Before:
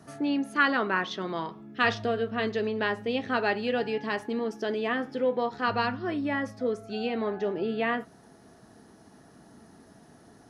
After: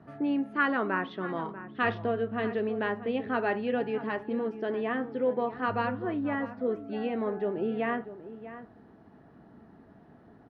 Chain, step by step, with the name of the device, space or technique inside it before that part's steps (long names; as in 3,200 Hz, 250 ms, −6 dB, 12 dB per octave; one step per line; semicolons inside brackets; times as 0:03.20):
shout across a valley (high-frequency loss of the air 500 metres; slap from a distant wall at 110 metres, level −13 dB)